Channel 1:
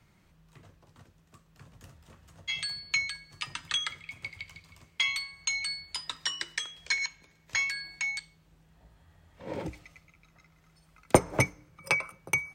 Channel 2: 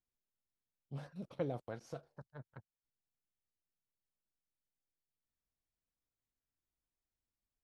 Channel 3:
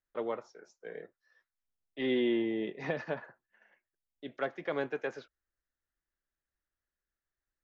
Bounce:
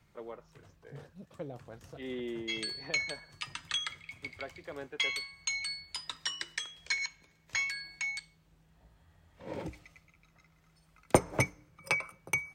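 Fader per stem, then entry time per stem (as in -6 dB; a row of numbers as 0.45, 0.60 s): -3.5, -4.0, -9.5 dB; 0.00, 0.00, 0.00 s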